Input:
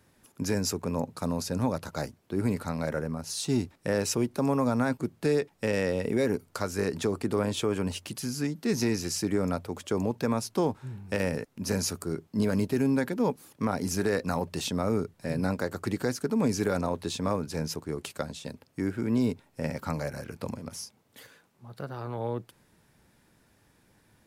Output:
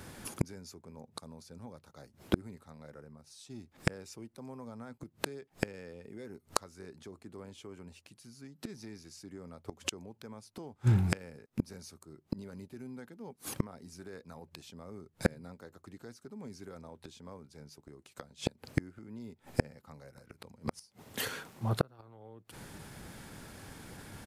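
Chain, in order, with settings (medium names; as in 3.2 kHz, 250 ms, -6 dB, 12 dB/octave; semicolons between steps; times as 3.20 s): pitch shift -1 st; inverted gate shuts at -29 dBFS, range -35 dB; trim +15 dB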